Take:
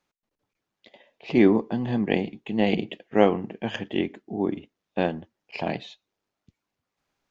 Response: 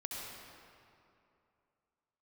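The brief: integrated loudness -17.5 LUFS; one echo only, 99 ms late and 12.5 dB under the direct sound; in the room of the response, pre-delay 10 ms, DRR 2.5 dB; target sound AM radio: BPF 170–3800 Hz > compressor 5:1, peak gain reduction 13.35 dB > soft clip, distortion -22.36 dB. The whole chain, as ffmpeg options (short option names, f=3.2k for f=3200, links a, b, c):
-filter_complex "[0:a]aecho=1:1:99:0.237,asplit=2[a][b];[1:a]atrim=start_sample=2205,adelay=10[c];[b][c]afir=irnorm=-1:irlink=0,volume=-3dB[d];[a][d]amix=inputs=2:normalize=0,highpass=170,lowpass=3.8k,acompressor=threshold=-24dB:ratio=5,asoftclip=threshold=-16.5dB,volume=13.5dB"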